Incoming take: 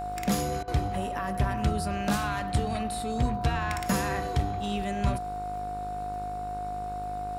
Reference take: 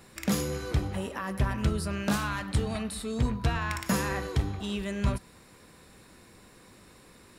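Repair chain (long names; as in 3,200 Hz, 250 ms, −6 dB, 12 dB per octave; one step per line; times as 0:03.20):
click removal
hum removal 51.3 Hz, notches 30
notch filter 720 Hz, Q 30
repair the gap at 0:00.63, 46 ms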